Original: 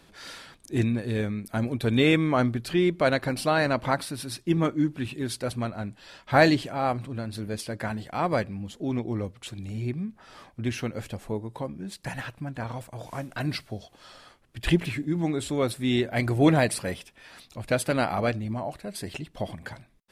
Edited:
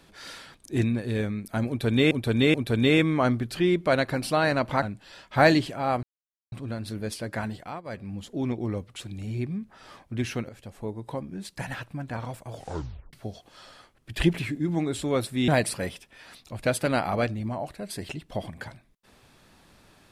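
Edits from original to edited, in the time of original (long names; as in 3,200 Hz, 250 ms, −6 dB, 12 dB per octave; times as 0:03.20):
0:01.68–0:02.11: repeat, 3 plays
0:03.96–0:05.78: remove
0:06.99: splice in silence 0.49 s
0:07.99–0:08.61: duck −20.5 dB, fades 0.30 s
0:10.96–0:11.53: fade in, from −14.5 dB
0:13.00: tape stop 0.60 s
0:15.95–0:16.53: remove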